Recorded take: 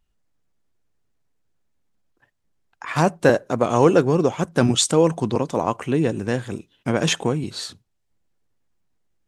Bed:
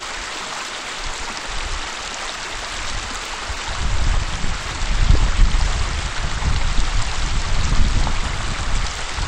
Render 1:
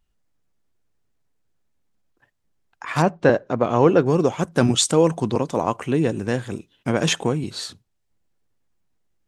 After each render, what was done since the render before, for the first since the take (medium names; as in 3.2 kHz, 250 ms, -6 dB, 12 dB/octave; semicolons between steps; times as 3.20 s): 3.02–4.06 s: distance through air 160 m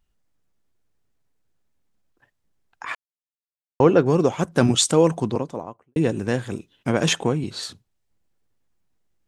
2.95–3.80 s: mute; 5.06–5.96 s: studio fade out; 7.17–7.63 s: treble shelf 9.3 kHz -8 dB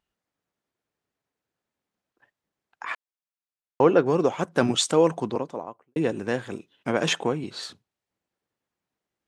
high-pass 360 Hz 6 dB/octave; treble shelf 5.1 kHz -9.5 dB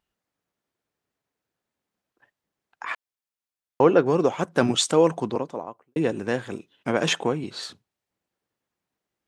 trim +1 dB